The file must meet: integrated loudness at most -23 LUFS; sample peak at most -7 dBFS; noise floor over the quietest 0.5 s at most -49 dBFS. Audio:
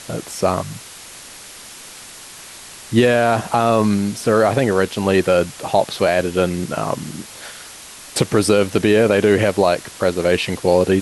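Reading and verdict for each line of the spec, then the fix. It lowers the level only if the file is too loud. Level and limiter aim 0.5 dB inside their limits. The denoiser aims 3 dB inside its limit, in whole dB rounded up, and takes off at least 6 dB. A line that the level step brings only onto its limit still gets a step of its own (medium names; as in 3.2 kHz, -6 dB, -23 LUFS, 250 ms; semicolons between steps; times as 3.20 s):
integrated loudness -17.5 LUFS: fail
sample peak -3.0 dBFS: fail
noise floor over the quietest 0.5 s -38 dBFS: fail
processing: noise reduction 8 dB, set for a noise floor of -38 dBFS; trim -6 dB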